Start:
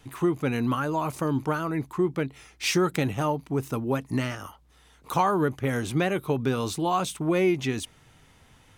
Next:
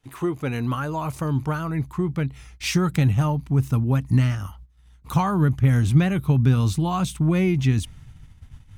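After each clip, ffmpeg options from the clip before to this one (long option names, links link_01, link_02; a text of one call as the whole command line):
ffmpeg -i in.wav -af "agate=range=-16dB:threshold=-55dB:ratio=16:detection=peak,asubboost=boost=11.5:cutoff=130" out.wav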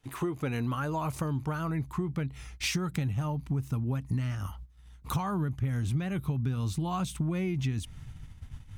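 ffmpeg -i in.wav -af "acompressor=threshold=-28dB:ratio=6" out.wav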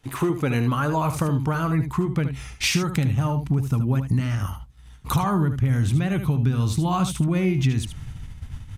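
ffmpeg -i in.wav -af "aecho=1:1:75:0.335,volume=8.5dB" -ar 32000 -c:a sbc -b:a 192k out.sbc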